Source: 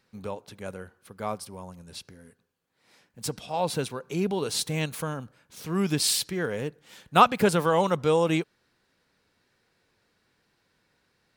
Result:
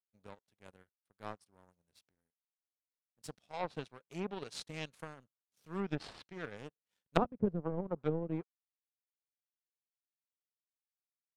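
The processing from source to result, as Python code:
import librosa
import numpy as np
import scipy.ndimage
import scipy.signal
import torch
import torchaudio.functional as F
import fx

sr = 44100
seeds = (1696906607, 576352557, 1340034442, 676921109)

y = fx.power_curve(x, sr, exponent=2.0)
y = fx.env_lowpass_down(y, sr, base_hz=330.0, full_db=-29.0)
y = y * 10.0 ** (2.5 / 20.0)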